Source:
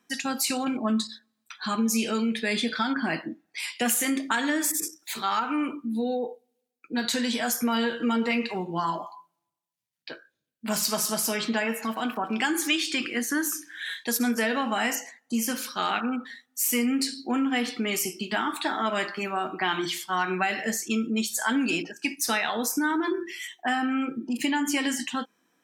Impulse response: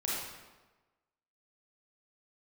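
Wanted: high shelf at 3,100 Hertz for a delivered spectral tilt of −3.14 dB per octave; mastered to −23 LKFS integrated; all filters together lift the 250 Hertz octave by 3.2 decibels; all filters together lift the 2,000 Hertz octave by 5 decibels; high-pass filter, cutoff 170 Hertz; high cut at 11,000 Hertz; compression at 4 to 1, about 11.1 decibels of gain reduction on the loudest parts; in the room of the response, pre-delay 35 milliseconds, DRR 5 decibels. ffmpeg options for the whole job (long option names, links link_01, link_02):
-filter_complex "[0:a]highpass=170,lowpass=11000,equalizer=frequency=250:width_type=o:gain=4.5,equalizer=frequency=2000:width_type=o:gain=8.5,highshelf=frequency=3100:gain=-7,acompressor=threshold=-32dB:ratio=4,asplit=2[link_01][link_02];[1:a]atrim=start_sample=2205,adelay=35[link_03];[link_02][link_03]afir=irnorm=-1:irlink=0,volume=-10.5dB[link_04];[link_01][link_04]amix=inputs=2:normalize=0,volume=10dB"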